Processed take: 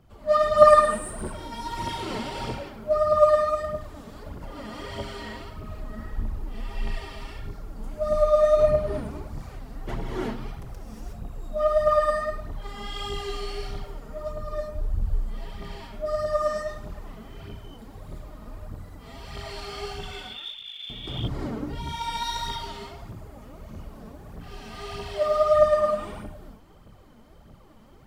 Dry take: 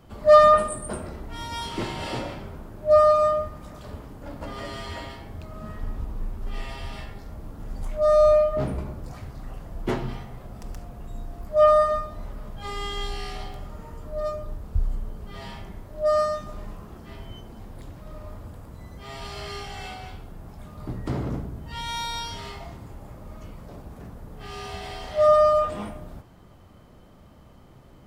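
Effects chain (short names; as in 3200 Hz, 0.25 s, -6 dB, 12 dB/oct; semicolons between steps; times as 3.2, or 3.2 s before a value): 20–20.9 inverted band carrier 3500 Hz; non-linear reverb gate 0.39 s rising, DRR -6.5 dB; phaser 1.6 Hz, delay 4.8 ms, feedback 53%; gain -9.5 dB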